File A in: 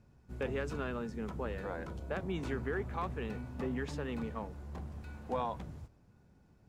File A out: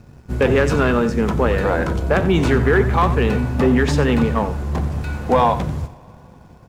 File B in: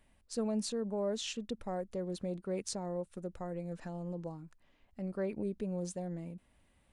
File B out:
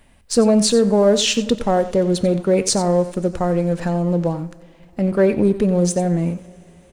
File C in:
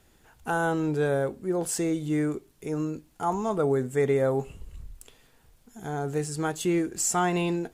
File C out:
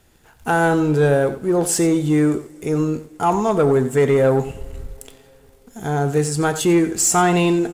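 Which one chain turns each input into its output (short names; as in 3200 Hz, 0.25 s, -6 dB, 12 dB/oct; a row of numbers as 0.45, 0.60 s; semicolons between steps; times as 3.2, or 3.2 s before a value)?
echo 90 ms -14 dB; sample leveller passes 1; two-slope reverb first 0.37 s, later 4.3 s, from -19 dB, DRR 14.5 dB; match loudness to -18 LUFS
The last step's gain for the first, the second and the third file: +17.5, +17.0, +6.5 dB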